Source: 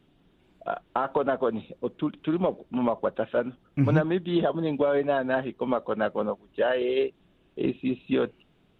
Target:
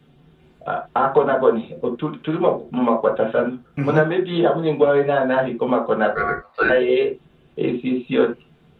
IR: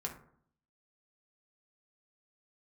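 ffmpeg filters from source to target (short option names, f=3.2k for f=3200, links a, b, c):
-filter_complex "[0:a]asettb=1/sr,asplit=3[a][b][c];[a]atrim=end=6.124[d];[b]atrim=start=6.12:end=6.7,asetpts=PTS-STARTPTS,afade=t=in:d=0.004:c=qsin,afade=t=out:st=0.576:d=0.004:c=qsin,aeval=exprs='val(0)*sin(2*PI*920*n/s)':c=same[e];[c]atrim=start=6.696[f];[d][e]acrossfade=d=0.004:c1=hsin:c2=qsin[g];[g][f]acrossfade=d=0.004:c1=qsin:c2=hsin[h];[1:a]atrim=start_sample=2205,atrim=end_sample=3969[i];[h][i]afir=irnorm=-1:irlink=0,acrossover=split=250[j][k];[j]acompressor=threshold=-40dB:ratio=6[l];[l][k]amix=inputs=2:normalize=0,volume=8.5dB"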